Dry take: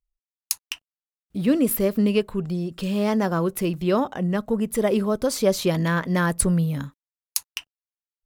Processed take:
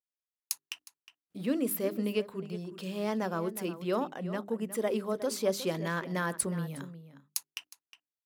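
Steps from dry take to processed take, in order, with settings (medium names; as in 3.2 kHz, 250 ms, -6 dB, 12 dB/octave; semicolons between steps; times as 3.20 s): high-pass 200 Hz 12 dB/octave; hum notches 50/100/150/200/250/300/350/400 Hz; echo from a far wall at 62 m, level -13 dB; trim -8.5 dB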